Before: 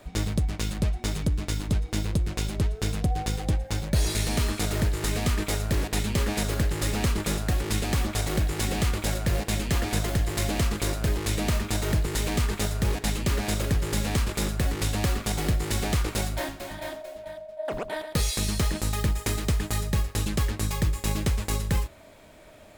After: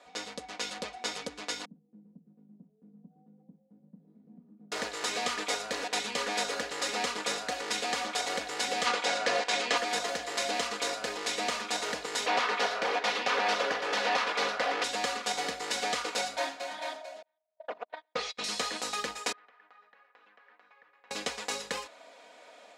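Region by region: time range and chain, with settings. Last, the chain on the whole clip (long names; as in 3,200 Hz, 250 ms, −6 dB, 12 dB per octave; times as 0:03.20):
0:01.65–0:04.72: hard clipping −23 dBFS + flat-topped band-pass 180 Hz, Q 2.3
0:08.85–0:09.76: ceiling on every frequency bin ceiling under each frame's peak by 14 dB + high-frequency loss of the air 60 metres
0:12.26–0:14.84: parametric band 7,900 Hz −8.5 dB 0.58 octaves + mid-hump overdrive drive 17 dB, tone 1,900 Hz, clips at −14.5 dBFS + highs frequency-modulated by the lows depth 0.49 ms
0:17.22–0:18.44: low-pass filter 3,400 Hz + noise gate −30 dBFS, range −38 dB + highs frequency-modulated by the lows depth 0.12 ms
0:19.32–0:21.11: low-pass filter 1,700 Hz 24 dB per octave + first difference + downward compressor 5 to 1, threshold −54 dBFS
whole clip: Chebyshev band-pass filter 580–6,000 Hz, order 2; comb filter 4.1 ms, depth 67%; automatic gain control gain up to 4 dB; level −4 dB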